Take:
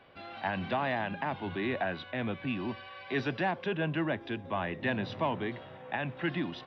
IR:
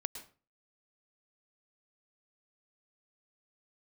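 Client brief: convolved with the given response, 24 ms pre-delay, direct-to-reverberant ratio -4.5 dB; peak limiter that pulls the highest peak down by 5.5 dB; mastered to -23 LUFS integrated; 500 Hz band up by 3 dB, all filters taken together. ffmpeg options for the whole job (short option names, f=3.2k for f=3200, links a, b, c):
-filter_complex "[0:a]equalizer=f=500:t=o:g=4,alimiter=limit=-23dB:level=0:latency=1,asplit=2[a][b];[1:a]atrim=start_sample=2205,adelay=24[c];[b][c]afir=irnorm=-1:irlink=0,volume=5dB[d];[a][d]amix=inputs=2:normalize=0,volume=5dB"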